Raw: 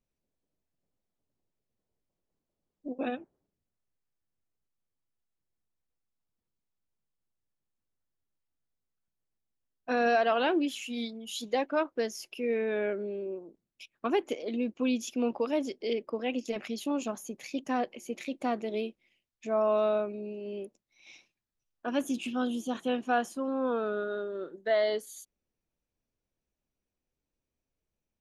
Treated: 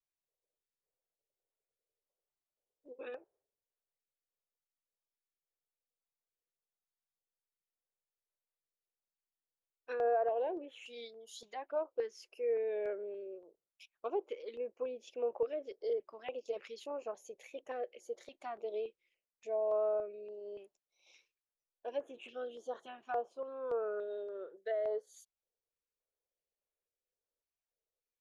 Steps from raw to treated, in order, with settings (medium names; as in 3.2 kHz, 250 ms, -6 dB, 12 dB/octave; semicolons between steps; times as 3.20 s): low-pass that closes with the level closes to 1.1 kHz, closed at -23.5 dBFS; resonant low shelf 340 Hz -11 dB, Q 3; step-sequenced notch 3.5 Hz 490–4900 Hz; trim -9 dB